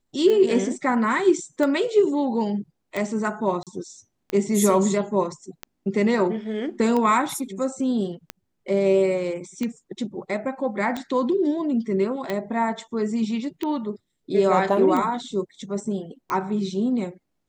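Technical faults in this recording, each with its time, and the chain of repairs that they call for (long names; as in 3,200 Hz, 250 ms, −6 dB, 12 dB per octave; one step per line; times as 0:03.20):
scratch tick 45 rpm −14 dBFS
0:03.63–0:03.67: drop-out 37 ms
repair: click removal
repair the gap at 0:03.63, 37 ms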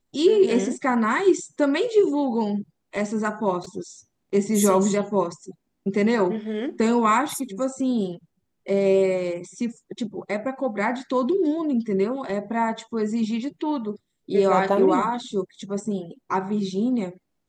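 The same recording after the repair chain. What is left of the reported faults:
none of them is left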